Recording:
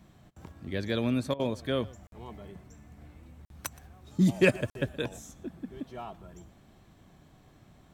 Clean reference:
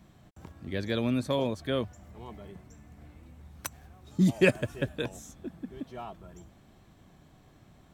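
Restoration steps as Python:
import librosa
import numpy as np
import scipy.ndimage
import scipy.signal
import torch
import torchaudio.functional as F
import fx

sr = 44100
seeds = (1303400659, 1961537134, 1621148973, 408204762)

y = fx.fix_declip(x, sr, threshold_db=-12.5)
y = fx.fix_interpolate(y, sr, at_s=(2.07, 3.45, 4.7), length_ms=52.0)
y = fx.fix_interpolate(y, sr, at_s=(1.34,), length_ms=54.0)
y = fx.fix_echo_inverse(y, sr, delay_ms=120, level_db=-22.0)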